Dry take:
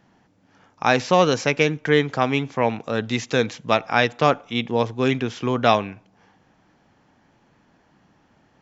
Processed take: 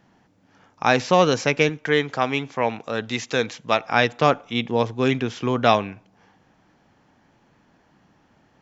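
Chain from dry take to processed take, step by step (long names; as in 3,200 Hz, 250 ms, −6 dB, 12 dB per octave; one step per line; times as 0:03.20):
0:01.69–0:03.88: low-shelf EQ 340 Hz −6.5 dB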